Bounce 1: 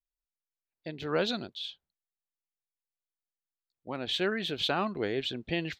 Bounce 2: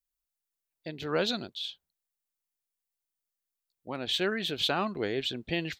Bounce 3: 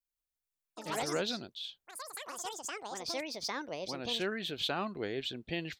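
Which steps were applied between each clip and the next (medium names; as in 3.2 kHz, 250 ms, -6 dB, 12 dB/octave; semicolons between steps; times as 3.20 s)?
treble shelf 6.6 kHz +9.5 dB
ever faster or slower copies 170 ms, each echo +6 st, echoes 3; trim -5.5 dB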